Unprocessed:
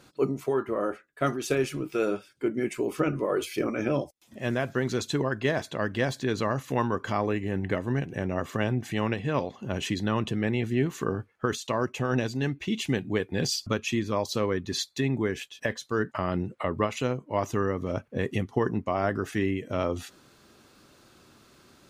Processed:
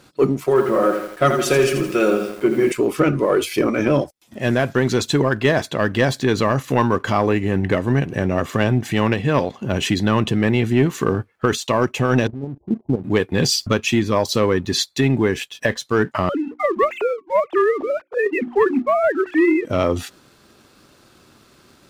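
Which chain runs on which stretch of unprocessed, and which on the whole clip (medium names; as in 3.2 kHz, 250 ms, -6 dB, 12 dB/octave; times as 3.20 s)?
0.43–2.72 s: hum notches 50/100/150/200/250/300/350/400/450 Hz + comb 5.5 ms, depth 47% + bit-crushed delay 83 ms, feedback 55%, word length 8-bit, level -7.5 dB
12.27–13.04 s: steep low-pass 950 Hz 96 dB/octave + level held to a coarse grid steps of 13 dB
16.29–19.65 s: formants replaced by sine waves + hum notches 60/120/180/240/300/360 Hz
whole clip: band-stop 6.5 kHz, Q 29; waveshaping leveller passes 1; trim +6.5 dB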